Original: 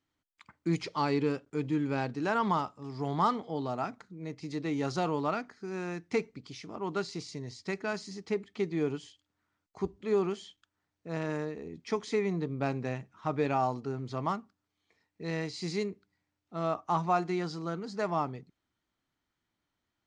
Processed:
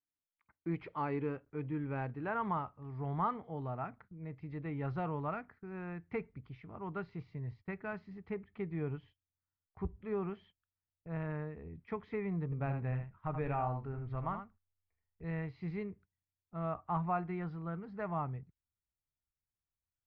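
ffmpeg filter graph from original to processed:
ffmpeg -i in.wav -filter_complex "[0:a]asettb=1/sr,asplit=3[link_01][link_02][link_03];[link_01]atrim=end=12.444[link_04];[link_02]atrim=start=12.44:end=15.24,asetpts=PTS-STARTPTS,afade=type=in:duration=0.004:curve=qsin,afade=type=out:start_time=2.796:duration=0.004:curve=qsin,asubboost=boost=10:cutoff=53,aecho=1:1:79:0.422,atrim=end_sample=123480[link_05];[link_03]atrim=start=15.236[link_06];[link_04][link_05]acrossfade=duration=0.004:curve1=hsin:curve2=qsin[link_07];[link_07][link_06]acrossfade=duration=0.004:curve1=qsin:curve2=hsin,lowpass=frequency=2300:width=0.5412,lowpass=frequency=2300:width=1.3066,agate=range=-15dB:threshold=-53dB:ratio=16:detection=peak,asubboost=boost=9:cutoff=95,volume=-6dB" out.wav

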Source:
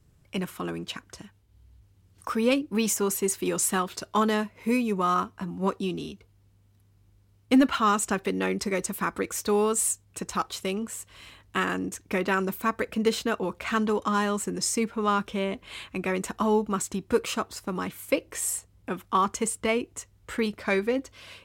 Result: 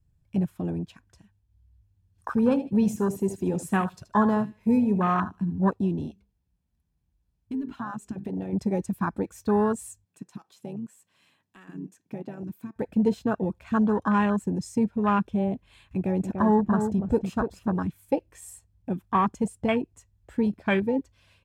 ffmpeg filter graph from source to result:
ffmpeg -i in.wav -filter_complex "[0:a]asettb=1/sr,asplit=3[link_01][link_02][link_03];[link_01]atrim=end=2.304[link_04];[link_02]atrim=start=2.3:end=5.59,asetpts=PTS-STARTPTS,afade=type=in:duration=0.004:curve=qsin,afade=type=out:start_time=3.286:duration=0.004:curve=qsin,bandreject=frequency=300:width=9.1,aecho=1:1:77|154|231:0.251|0.0804|0.0257,atrim=end_sample=145089[link_05];[link_03]atrim=start=5.586[link_06];[link_04][link_05]acrossfade=duration=0.004:curve1=hsin:curve2=qsin[link_07];[link_07][link_06]acrossfade=duration=0.004:curve1=qsin:curve2=hsin,asettb=1/sr,asplit=3[link_08][link_09][link_10];[link_08]atrim=end=6.114[link_11];[link_09]atrim=start=6.11:end=8.53,asetpts=PTS-STARTPTS,afade=type=in:duration=0.004:curve=qsin,afade=type=out:start_time=2.416:duration=0.004:curve=qsin,bandreject=frequency=50:width_type=h:width=6,bandreject=frequency=100:width_type=h:width=6,bandreject=frequency=150:width_type=h:width=6,bandreject=frequency=200:width_type=h:width=6,bandreject=frequency=250:width_type=h:width=6,bandreject=frequency=300:width_type=h:width=6,bandreject=frequency=350:width_type=h:width=6,bandreject=frequency=400:width_type=h:width=6,bandreject=frequency=450:width_type=h:width=6,bandreject=frequency=500:width_type=h:width=6,acompressor=threshold=-30dB:ratio=8:attack=3.2:release=140:knee=1:detection=peak[link_12];[link_10]atrim=start=8.526[link_13];[link_11][link_12]acrossfade=duration=0.004:curve1=hsin:curve2=qsin[link_14];[link_14][link_13]acrossfade=duration=0.004:curve1=qsin:curve2=hsin,asettb=1/sr,asplit=3[link_15][link_16][link_17];[link_15]atrim=end=10.054[link_18];[link_16]atrim=start=10.05:end=12.76,asetpts=PTS-STARTPTS,afade=type=in:duration=0.004:curve=qsin,afade=type=out:start_time=2.706:duration=0.004:curve=qsin,highpass=frequency=170:width=0.5412,highpass=frequency=170:width=1.3066,acompressor=threshold=-40dB:ratio=2:attack=3.2:release=140:knee=1:detection=peak[link_19];[link_17]atrim=start=12.756[link_20];[link_18][link_19]acrossfade=duration=0.004:curve1=hsin:curve2=qsin[link_21];[link_21][link_20]acrossfade=duration=0.004:curve1=qsin:curve2=hsin,asettb=1/sr,asplit=3[link_22][link_23][link_24];[link_22]atrim=end=15.914[link_25];[link_23]atrim=start=15.91:end=17.79,asetpts=PTS-STARTPTS,afade=type=in:duration=0.004:curve=qsin,afade=type=out:start_time=1.876:duration=0.004:curve=qsin,acompressor=mode=upward:threshold=-36dB:ratio=2.5:attack=3.2:release=140:knee=2.83:detection=peak,asplit=2[link_26][link_27];[link_27]adelay=291,lowpass=frequency=1500:poles=1,volume=-6dB,asplit=2[link_28][link_29];[link_29]adelay=291,lowpass=frequency=1500:poles=1,volume=0.16,asplit=2[link_30][link_31];[link_31]adelay=291,lowpass=frequency=1500:poles=1,volume=0.16[link_32];[link_26][link_28][link_30][link_32]amix=inputs=4:normalize=0,atrim=end_sample=82908[link_33];[link_24]atrim=start=17.786[link_34];[link_25][link_33]acrossfade=duration=0.004:curve1=hsin:curve2=qsin[link_35];[link_35][link_34]acrossfade=duration=0.004:curve1=qsin:curve2=hsin,afwtdn=0.0398,lowshelf=frequency=190:gain=11.5,aecho=1:1:1.2:0.32" out.wav

